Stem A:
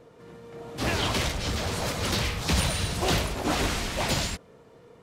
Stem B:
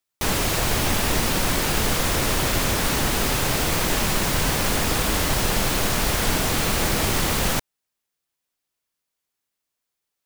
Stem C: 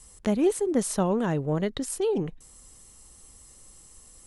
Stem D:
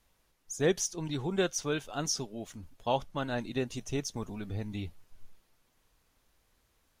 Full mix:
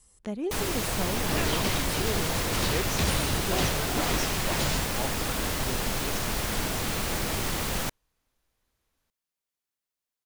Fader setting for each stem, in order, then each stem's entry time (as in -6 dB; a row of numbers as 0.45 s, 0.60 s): -3.5 dB, -7.5 dB, -9.0 dB, -6.5 dB; 0.50 s, 0.30 s, 0.00 s, 2.10 s